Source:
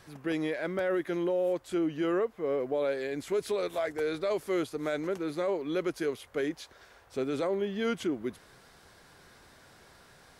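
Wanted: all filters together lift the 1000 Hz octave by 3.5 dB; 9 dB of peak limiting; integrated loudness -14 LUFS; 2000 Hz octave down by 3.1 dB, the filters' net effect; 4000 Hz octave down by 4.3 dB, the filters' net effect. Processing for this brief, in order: bell 1000 Hz +7 dB; bell 2000 Hz -6.5 dB; bell 4000 Hz -3.5 dB; gain +22 dB; limiter -5.5 dBFS

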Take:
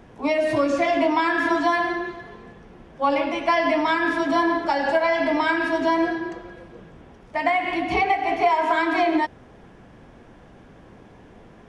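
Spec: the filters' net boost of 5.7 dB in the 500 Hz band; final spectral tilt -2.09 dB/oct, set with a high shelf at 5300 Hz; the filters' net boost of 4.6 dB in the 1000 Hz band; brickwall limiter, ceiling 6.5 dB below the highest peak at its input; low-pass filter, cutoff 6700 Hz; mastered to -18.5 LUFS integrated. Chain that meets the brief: LPF 6700 Hz; bell 500 Hz +7 dB; bell 1000 Hz +3 dB; high shelf 5300 Hz +4 dB; gain +1 dB; limiter -9 dBFS

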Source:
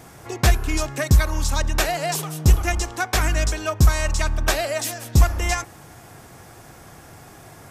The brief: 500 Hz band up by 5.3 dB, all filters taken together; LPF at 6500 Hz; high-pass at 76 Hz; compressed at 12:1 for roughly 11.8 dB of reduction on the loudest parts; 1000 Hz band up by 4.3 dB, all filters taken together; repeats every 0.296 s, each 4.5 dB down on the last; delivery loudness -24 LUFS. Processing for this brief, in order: HPF 76 Hz; LPF 6500 Hz; bell 500 Hz +6 dB; bell 1000 Hz +3.5 dB; compressor 12:1, threshold -24 dBFS; feedback echo 0.296 s, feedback 60%, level -4.5 dB; gain +4 dB

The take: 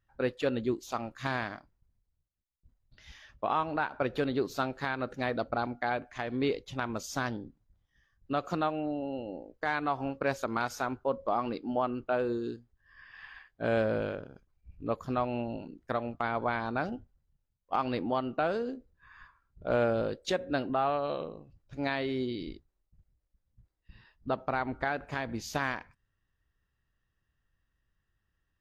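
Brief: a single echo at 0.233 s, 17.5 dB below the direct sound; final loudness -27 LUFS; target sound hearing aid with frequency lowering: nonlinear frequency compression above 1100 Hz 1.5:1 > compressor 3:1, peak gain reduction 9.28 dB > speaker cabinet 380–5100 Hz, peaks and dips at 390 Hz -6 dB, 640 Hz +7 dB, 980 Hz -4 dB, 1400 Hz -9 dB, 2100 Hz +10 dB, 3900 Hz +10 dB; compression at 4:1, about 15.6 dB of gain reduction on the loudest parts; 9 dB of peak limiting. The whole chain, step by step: compressor 4:1, threshold -44 dBFS; limiter -37 dBFS; echo 0.233 s -17.5 dB; nonlinear frequency compression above 1100 Hz 1.5:1; compressor 3:1, threshold -53 dBFS; speaker cabinet 380–5100 Hz, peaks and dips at 390 Hz -6 dB, 640 Hz +7 dB, 980 Hz -4 dB, 1400 Hz -9 dB, 2100 Hz +10 dB, 3900 Hz +10 dB; gain +29 dB

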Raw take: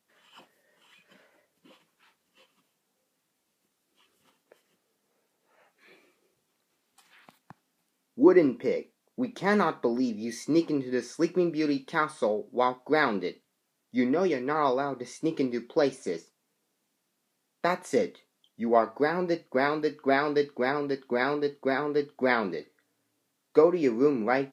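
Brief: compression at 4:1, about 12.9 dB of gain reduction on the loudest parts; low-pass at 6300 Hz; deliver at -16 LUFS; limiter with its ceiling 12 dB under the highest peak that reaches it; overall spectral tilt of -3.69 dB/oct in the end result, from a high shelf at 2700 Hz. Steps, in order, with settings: LPF 6300 Hz; high shelf 2700 Hz -7.5 dB; compressor 4:1, threshold -30 dBFS; gain +22.5 dB; limiter -5 dBFS

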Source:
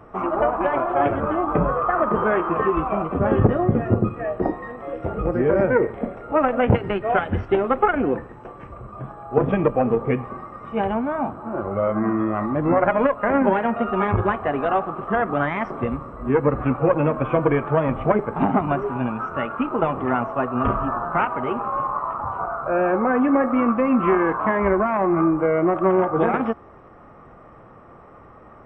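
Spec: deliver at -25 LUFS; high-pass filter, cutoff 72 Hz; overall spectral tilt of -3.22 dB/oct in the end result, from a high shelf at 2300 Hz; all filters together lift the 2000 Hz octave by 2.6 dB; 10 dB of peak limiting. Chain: HPF 72 Hz; bell 2000 Hz +7 dB; high shelf 2300 Hz -7 dB; gain -2 dB; limiter -14 dBFS

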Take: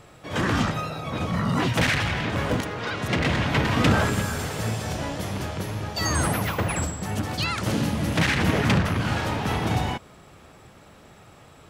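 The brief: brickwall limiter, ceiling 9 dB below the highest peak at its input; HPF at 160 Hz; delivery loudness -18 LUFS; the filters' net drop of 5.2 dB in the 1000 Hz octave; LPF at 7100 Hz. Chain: HPF 160 Hz; LPF 7100 Hz; bell 1000 Hz -7 dB; gain +11 dB; limiter -7 dBFS

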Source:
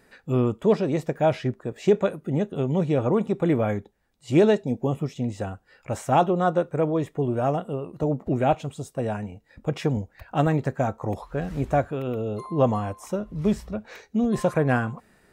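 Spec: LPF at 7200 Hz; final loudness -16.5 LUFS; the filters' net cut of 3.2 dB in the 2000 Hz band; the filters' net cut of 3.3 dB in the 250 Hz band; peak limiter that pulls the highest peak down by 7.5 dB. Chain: LPF 7200 Hz; bell 250 Hz -4.5 dB; bell 2000 Hz -4.5 dB; gain +12 dB; limiter -4.5 dBFS

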